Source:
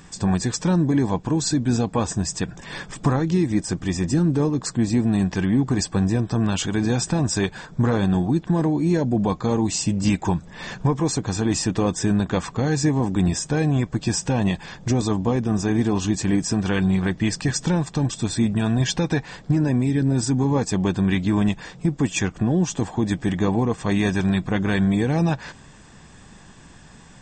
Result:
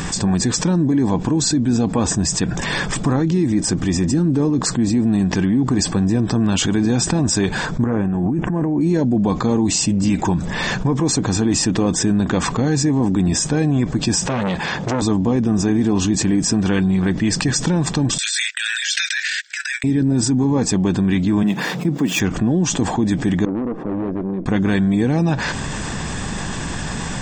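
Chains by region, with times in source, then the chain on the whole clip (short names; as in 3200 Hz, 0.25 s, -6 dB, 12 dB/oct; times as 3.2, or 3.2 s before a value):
7.84–8.81 high shelf 4500 Hz -11 dB + negative-ratio compressor -27 dBFS + Butterworth band-stop 4200 Hz, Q 1.2
14.27–15.02 HPF 210 Hz 6 dB/oct + high shelf 5800 Hz -10.5 dB + core saturation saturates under 1100 Hz
18.18–19.84 steep high-pass 1500 Hz 96 dB/oct + gate -48 dBFS, range -36 dB + transient shaper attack -10 dB, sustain +10 dB
21.43–22.2 median filter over 5 samples + HPF 150 Hz 24 dB/oct
23.45–24.46 ladder band-pass 340 Hz, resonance 45% + tube stage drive 33 dB, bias 0.7
whole clip: dynamic EQ 260 Hz, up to +6 dB, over -32 dBFS, Q 1.3; fast leveller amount 70%; gain -3.5 dB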